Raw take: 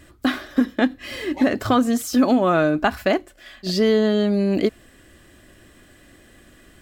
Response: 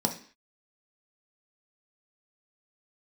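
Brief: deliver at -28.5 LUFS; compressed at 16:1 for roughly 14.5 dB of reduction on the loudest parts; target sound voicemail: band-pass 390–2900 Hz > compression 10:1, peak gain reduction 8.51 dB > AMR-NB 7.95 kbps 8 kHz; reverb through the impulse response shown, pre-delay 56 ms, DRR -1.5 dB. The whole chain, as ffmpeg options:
-filter_complex "[0:a]acompressor=threshold=0.0447:ratio=16,asplit=2[s0][s1];[1:a]atrim=start_sample=2205,adelay=56[s2];[s1][s2]afir=irnorm=-1:irlink=0,volume=0.473[s3];[s0][s3]amix=inputs=2:normalize=0,highpass=390,lowpass=2900,acompressor=threshold=0.0316:ratio=10,volume=2.37" -ar 8000 -c:a libopencore_amrnb -b:a 7950

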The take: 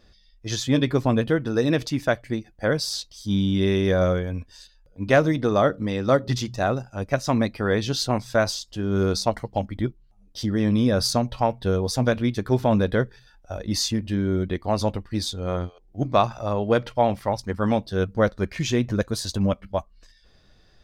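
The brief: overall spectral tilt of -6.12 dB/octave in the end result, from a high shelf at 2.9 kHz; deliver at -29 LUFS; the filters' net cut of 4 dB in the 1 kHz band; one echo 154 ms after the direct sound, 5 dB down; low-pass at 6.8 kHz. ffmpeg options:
-af "lowpass=6800,equalizer=f=1000:t=o:g=-5.5,highshelf=f=2900:g=-3.5,aecho=1:1:154:0.562,volume=0.562"

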